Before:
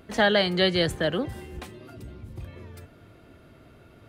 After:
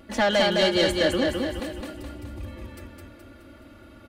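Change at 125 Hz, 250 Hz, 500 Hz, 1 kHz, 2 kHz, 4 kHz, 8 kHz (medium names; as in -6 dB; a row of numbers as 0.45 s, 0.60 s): -2.0 dB, +2.5 dB, +2.5 dB, +2.0 dB, +0.5 dB, +1.5 dB, +6.5 dB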